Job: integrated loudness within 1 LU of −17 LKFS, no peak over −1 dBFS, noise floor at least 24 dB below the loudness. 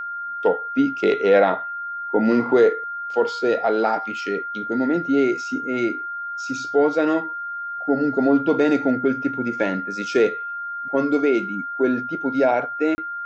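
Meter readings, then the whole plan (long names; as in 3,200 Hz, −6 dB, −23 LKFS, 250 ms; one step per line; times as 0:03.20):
number of dropouts 1; longest dropout 30 ms; interfering tone 1,400 Hz; level of the tone −27 dBFS; integrated loudness −21.5 LKFS; sample peak −6.0 dBFS; target loudness −17.0 LKFS
→ repair the gap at 0:12.95, 30 ms
notch filter 1,400 Hz, Q 30
level +4.5 dB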